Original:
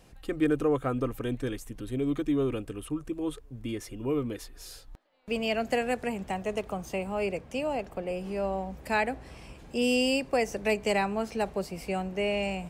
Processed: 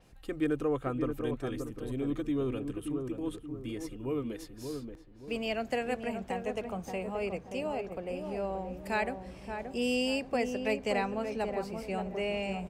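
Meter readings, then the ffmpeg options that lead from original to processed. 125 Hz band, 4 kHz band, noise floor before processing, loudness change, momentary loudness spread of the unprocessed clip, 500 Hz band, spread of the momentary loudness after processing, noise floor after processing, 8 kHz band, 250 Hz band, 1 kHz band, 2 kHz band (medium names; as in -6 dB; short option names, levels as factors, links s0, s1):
-3.5 dB, -4.5 dB, -50 dBFS, -4.0 dB, 10 LU, -3.5 dB, 9 LU, -51 dBFS, -6.5 dB, -3.0 dB, -3.5 dB, -4.5 dB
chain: -filter_complex "[0:a]asplit=2[s0][s1];[s1]adelay=578,lowpass=f=980:p=1,volume=0.562,asplit=2[s2][s3];[s3]adelay=578,lowpass=f=980:p=1,volume=0.41,asplit=2[s4][s5];[s5]adelay=578,lowpass=f=980:p=1,volume=0.41,asplit=2[s6][s7];[s7]adelay=578,lowpass=f=980:p=1,volume=0.41,asplit=2[s8][s9];[s9]adelay=578,lowpass=f=980:p=1,volume=0.41[s10];[s2][s4][s6][s8][s10]amix=inputs=5:normalize=0[s11];[s0][s11]amix=inputs=2:normalize=0,adynamicequalizer=threshold=0.00282:dfrequency=6400:dqfactor=0.7:tfrequency=6400:tqfactor=0.7:attack=5:release=100:ratio=0.375:range=3:mode=cutabove:tftype=highshelf,volume=0.596"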